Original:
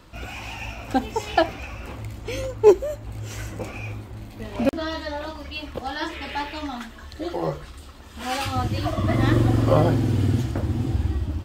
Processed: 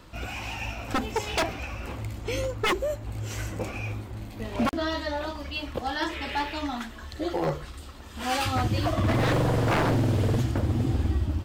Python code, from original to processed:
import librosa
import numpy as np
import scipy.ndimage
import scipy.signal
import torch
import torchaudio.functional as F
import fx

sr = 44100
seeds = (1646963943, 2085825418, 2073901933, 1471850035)

y = 10.0 ** (-18.0 / 20.0) * (np.abs((x / 10.0 ** (-18.0 / 20.0) + 3.0) % 4.0 - 2.0) - 1.0)